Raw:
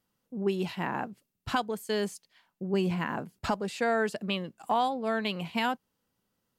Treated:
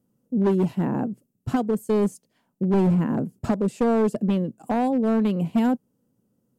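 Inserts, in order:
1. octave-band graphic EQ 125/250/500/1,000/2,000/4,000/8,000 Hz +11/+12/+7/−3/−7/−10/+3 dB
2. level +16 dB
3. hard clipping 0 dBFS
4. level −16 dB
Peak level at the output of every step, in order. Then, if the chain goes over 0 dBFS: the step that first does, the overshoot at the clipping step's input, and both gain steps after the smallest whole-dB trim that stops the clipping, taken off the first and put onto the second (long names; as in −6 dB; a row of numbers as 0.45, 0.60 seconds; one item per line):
−7.0, +9.0, 0.0, −16.0 dBFS
step 2, 9.0 dB
step 2 +7 dB, step 4 −7 dB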